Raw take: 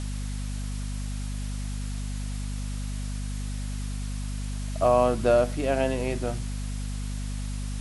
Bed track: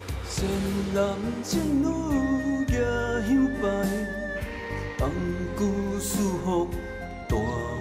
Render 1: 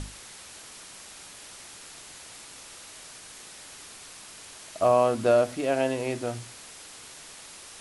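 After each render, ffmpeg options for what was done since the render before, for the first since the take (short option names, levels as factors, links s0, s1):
-af "bandreject=f=50:t=h:w=6,bandreject=f=100:t=h:w=6,bandreject=f=150:t=h:w=6,bandreject=f=200:t=h:w=6,bandreject=f=250:t=h:w=6"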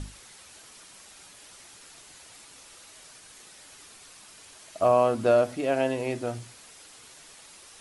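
-af "afftdn=nr=6:nf=-46"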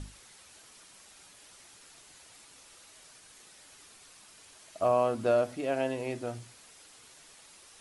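-af "volume=0.562"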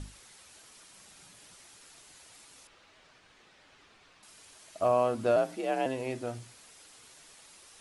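-filter_complex "[0:a]asettb=1/sr,asplit=3[s0][s1][s2];[s0]atrim=end=0.974[s3];[s1]atrim=start=0.97:end=1.54,asetpts=PTS-STARTPTS,afade=t=in:d=0.004:c=qsin,afade=t=out:st=0.566:d=0.004:c=qsin,equalizer=f=150:t=o:w=1.1:g=9.5[s4];[s2]atrim=start=1.536[s5];[s3][s4]acrossfade=d=0.004:c1=hsin:c2=qsin[s6];[s6][s5]acrossfade=d=0.004:c1=qsin:c2=hsin,asettb=1/sr,asplit=3[s7][s8][s9];[s7]atrim=end=2.674[s10];[s8]atrim=start=2.67:end=4.23,asetpts=PTS-STARTPTS,afade=t=in:d=0.004:c=qsin,afade=t=out:st=1.556:d=0.004:c=qsin,lowpass=3200[s11];[s9]atrim=start=4.226[s12];[s10][s11]acrossfade=d=0.004:c1=hsin:c2=qsin[s13];[s13][s12]acrossfade=d=0.004:c1=qsin:c2=hsin,asettb=1/sr,asplit=3[s14][s15][s16];[s14]atrim=end=5.364[s17];[s15]atrim=start=5.36:end=5.86,asetpts=PTS-STARTPTS,afade=t=in:d=0.004:c=qsin,afade=t=out:st=0.496:d=0.004:c=qsin,afreqshift=51[s18];[s16]atrim=start=5.856[s19];[s17][s18]acrossfade=d=0.004:c1=hsin:c2=qsin[s20];[s20][s19]acrossfade=d=0.004:c1=qsin:c2=hsin"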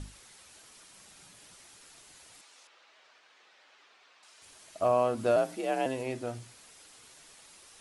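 -filter_complex "[0:a]asettb=1/sr,asplit=3[s0][s1][s2];[s0]atrim=end=2.414[s3];[s1]atrim=start=2.41:end=4.42,asetpts=PTS-STARTPTS,afade=t=in:d=0.004:c=qsin,afade=t=out:st=2.006:d=0.004:c=qsin,highpass=530,lowpass=7000[s4];[s2]atrim=start=4.416[s5];[s3][s4]acrossfade=d=0.004:c1=hsin:c2=qsin[s6];[s6][s5]acrossfade=d=0.004:c1=qsin:c2=hsin,asettb=1/sr,asplit=3[s7][s8][s9];[s7]atrim=end=5.174[s10];[s8]atrim=start=5.17:end=6.03,asetpts=PTS-STARTPTS,afade=t=in:d=0.004:c=qsin,afade=t=out:st=0.856:d=0.004:c=qsin,highshelf=f=7400:g=5.5[s11];[s9]atrim=start=6.026[s12];[s10][s11]acrossfade=d=0.004:c1=hsin:c2=qsin[s13];[s13][s12]acrossfade=d=0.004:c1=qsin:c2=hsin"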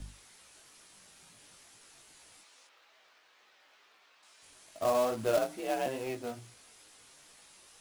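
-filter_complex "[0:a]flanger=delay=18:depth=3:speed=2.3,acrossover=split=120|2600[s0][s1][s2];[s1]acrusher=bits=3:mode=log:mix=0:aa=0.000001[s3];[s0][s3][s2]amix=inputs=3:normalize=0"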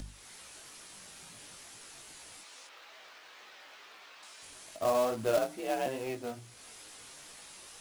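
-af "acompressor=mode=upward:threshold=0.00794:ratio=2.5"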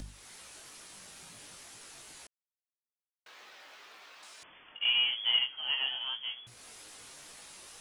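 -filter_complex "[0:a]asettb=1/sr,asplit=3[s0][s1][s2];[s0]atrim=end=4.434[s3];[s1]atrim=start=4.43:end=6.47,asetpts=PTS-STARTPTS,afade=t=in:d=0.004:c=qsin,afade=t=out:st=2.036:d=0.004:c=qsin,lowpass=f=3000:t=q:w=0.5098,lowpass=f=3000:t=q:w=0.6013,lowpass=f=3000:t=q:w=0.9,lowpass=f=3000:t=q:w=2.563,afreqshift=-3500[s4];[s2]atrim=start=6.466[s5];[s3][s4]acrossfade=d=0.004:c1=hsin:c2=qsin[s6];[s6][s5]acrossfade=d=0.004:c1=qsin:c2=hsin,asplit=3[s7][s8][s9];[s7]atrim=end=2.27,asetpts=PTS-STARTPTS,afade=t=out:st=2.266:d=0.004:c=hsin[s10];[s8]atrim=start=2.27:end=3.26,asetpts=PTS-STARTPTS,volume=0[s11];[s9]atrim=start=3.26,asetpts=PTS-STARTPTS,afade=t=in:d=0.004:c=hsin[s12];[s10][s11][s12]concat=n=3:v=0:a=1"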